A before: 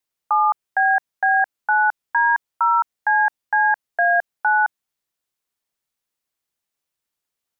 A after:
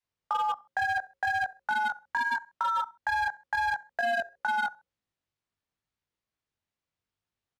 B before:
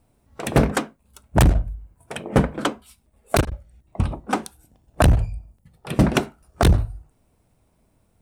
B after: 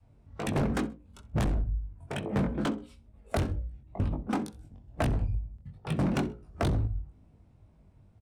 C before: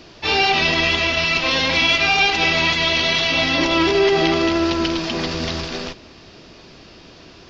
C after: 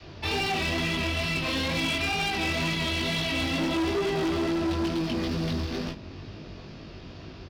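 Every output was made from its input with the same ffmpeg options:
-filter_complex "[0:a]equalizer=f=79:t=o:w=2.6:g=12,bandreject=f=60:t=h:w=6,bandreject=f=120:t=h:w=6,bandreject=f=180:t=h:w=6,bandreject=f=240:t=h:w=6,bandreject=f=300:t=h:w=6,bandreject=f=360:t=h:w=6,bandreject=f=420:t=h:w=6,bandreject=f=480:t=h:w=6,bandreject=f=540:t=h:w=6,adynamicequalizer=threshold=0.0355:dfrequency=240:dqfactor=1:tfrequency=240:tqfactor=1:attack=5:release=100:ratio=0.375:range=3:mode=boostabove:tftype=bell,acrossover=split=280|1300[a][b][c];[a]alimiter=limit=-6.5dB:level=0:latency=1:release=200[d];[d][b][c]amix=inputs=3:normalize=0,adynamicsmooth=sensitivity=5.5:basefreq=5.2k,asplit=2[e][f];[f]aecho=0:1:65|130:0.0794|0.0191[g];[e][g]amix=inputs=2:normalize=0,flanger=delay=18.5:depth=3.6:speed=2.2,asoftclip=type=hard:threshold=-16dB,acompressor=threshold=-32dB:ratio=2"

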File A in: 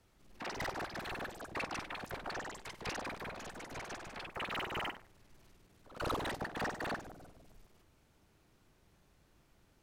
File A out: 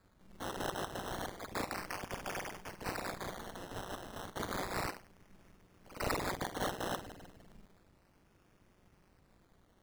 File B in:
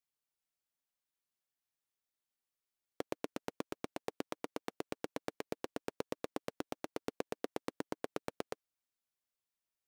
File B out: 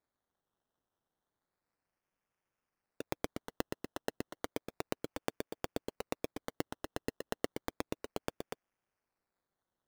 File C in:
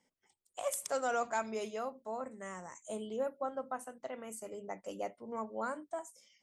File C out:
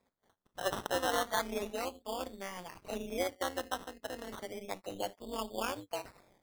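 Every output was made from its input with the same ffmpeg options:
-af "tremolo=f=190:d=0.857,acrusher=samples=15:mix=1:aa=0.000001:lfo=1:lforange=9:lforate=0.32,volume=5dB"

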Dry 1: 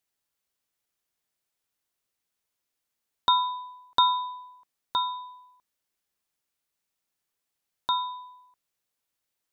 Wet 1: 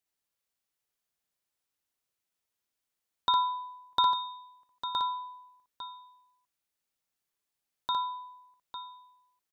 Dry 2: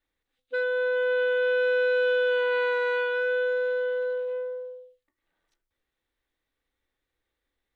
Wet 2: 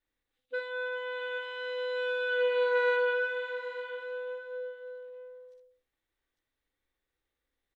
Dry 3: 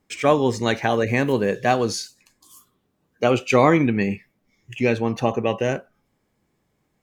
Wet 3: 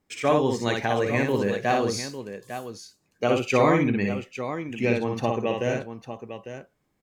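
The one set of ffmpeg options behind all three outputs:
-af "aecho=1:1:59|852:0.668|0.299,volume=-5dB"

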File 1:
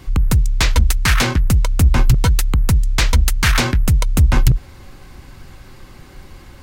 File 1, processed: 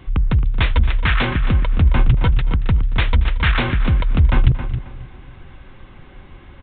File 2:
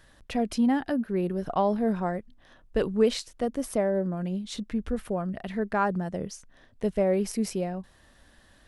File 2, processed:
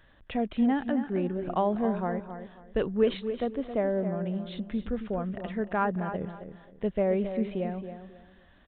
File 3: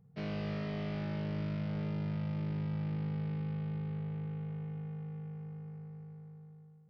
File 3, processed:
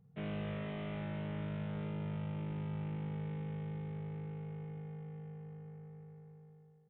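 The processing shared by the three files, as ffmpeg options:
-filter_complex "[0:a]asplit=2[a][b];[b]aecho=0:1:228|456:0.0944|0.0274[c];[a][c]amix=inputs=2:normalize=0,aresample=8000,aresample=44100,asplit=2[d][e];[e]adelay=269,lowpass=f=3k:p=1,volume=-9.5dB,asplit=2[f][g];[g]adelay=269,lowpass=f=3k:p=1,volume=0.26,asplit=2[h][i];[i]adelay=269,lowpass=f=3k:p=1,volume=0.26[j];[f][h][j]amix=inputs=3:normalize=0[k];[d][k]amix=inputs=2:normalize=0,volume=-2dB"

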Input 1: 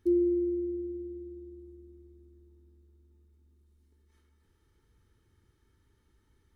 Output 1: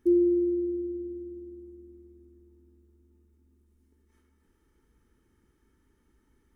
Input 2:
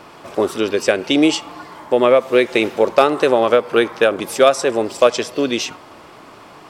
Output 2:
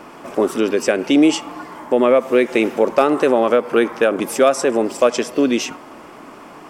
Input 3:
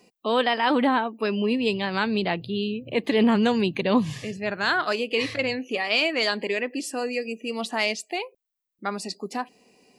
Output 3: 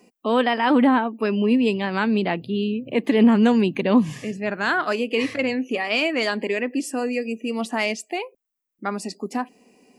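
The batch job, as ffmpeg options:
-filter_complex "[0:a]equalizer=f=100:t=o:w=0.67:g=-10,equalizer=f=250:t=o:w=0.67:g=6,equalizer=f=4k:t=o:w=0.67:g=-8,asplit=2[a][b];[b]alimiter=limit=-10.5dB:level=0:latency=1:release=85,volume=2.5dB[c];[a][c]amix=inputs=2:normalize=0,volume=-5.5dB"

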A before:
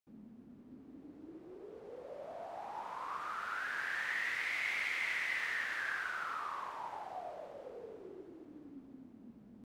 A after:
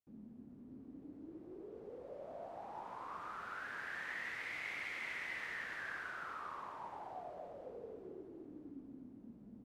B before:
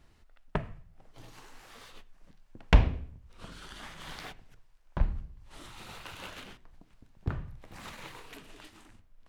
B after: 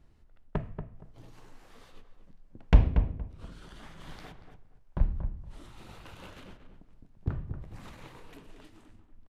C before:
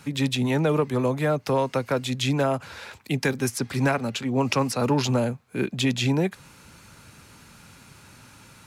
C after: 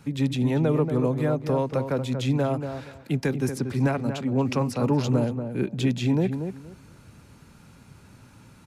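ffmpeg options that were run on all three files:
-filter_complex "[0:a]tiltshelf=f=700:g=5,asplit=2[a][b];[b]adelay=234,lowpass=f=1.5k:p=1,volume=-7.5dB,asplit=2[c][d];[d]adelay=234,lowpass=f=1.5k:p=1,volume=0.21,asplit=2[e][f];[f]adelay=234,lowpass=f=1.5k:p=1,volume=0.21[g];[a][c][e][g]amix=inputs=4:normalize=0,aresample=32000,aresample=44100,volume=-3.5dB"

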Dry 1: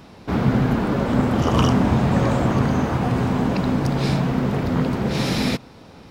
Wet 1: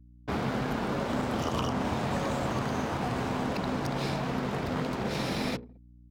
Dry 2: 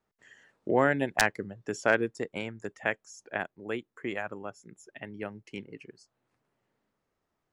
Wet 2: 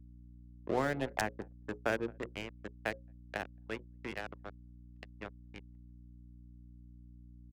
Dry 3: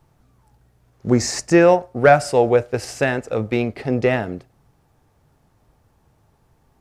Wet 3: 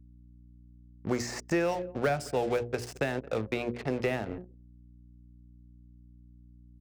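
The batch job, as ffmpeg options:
-filter_complex "[0:a]aeval=exprs='sgn(val(0))*max(abs(val(0))-0.0158,0)':c=same,bandreject=f=60:t=h:w=6,bandreject=f=120:t=h:w=6,bandreject=f=180:t=h:w=6,bandreject=f=240:t=h:w=6,bandreject=f=300:t=h:w=6,bandreject=f=360:t=h:w=6,bandreject=f=420:t=h:w=6,bandreject=f=480:t=h:w=6,bandreject=f=540:t=h:w=6,acrossover=split=360|1100|2800[a][b][c][d];[a]acompressor=threshold=-31dB:ratio=4[e];[b]acompressor=threshold=-30dB:ratio=4[f];[c]acompressor=threshold=-38dB:ratio=4[g];[d]acompressor=threshold=-39dB:ratio=4[h];[e][f][g][h]amix=inputs=4:normalize=0,asplit=2[i][j];[j]aecho=0:1:220|440:0.0891|0.0232[k];[i][k]amix=inputs=2:normalize=0,anlmdn=0.158,aeval=exprs='val(0)+0.00316*(sin(2*PI*60*n/s)+sin(2*PI*2*60*n/s)/2+sin(2*PI*3*60*n/s)/3+sin(2*PI*4*60*n/s)/4+sin(2*PI*5*60*n/s)/5)':c=same,volume=-2.5dB"

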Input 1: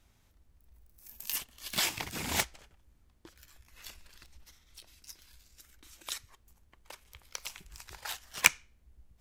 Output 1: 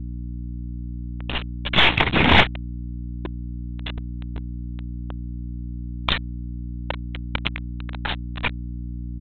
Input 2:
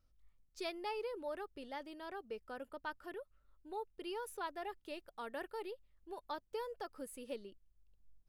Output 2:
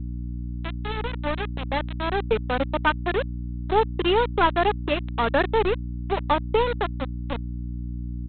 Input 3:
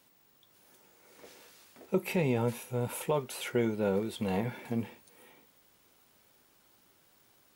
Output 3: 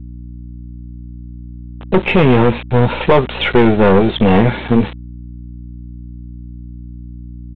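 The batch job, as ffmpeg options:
-af "afftdn=nr=21:nf=-51,aeval=exprs='(tanh(35.5*val(0)+0.7)-tanh(0.7))/35.5':c=same,dynaudnorm=f=150:g=21:m=15.5dB,aresample=8000,aeval=exprs='val(0)*gte(abs(val(0)),0.0168)':c=same,aresample=44100,acontrast=62,aeval=exprs='val(0)+0.02*(sin(2*PI*60*n/s)+sin(2*PI*2*60*n/s)/2+sin(2*PI*3*60*n/s)/3+sin(2*PI*4*60*n/s)/4+sin(2*PI*5*60*n/s)/5)':c=same,volume=4.5dB"

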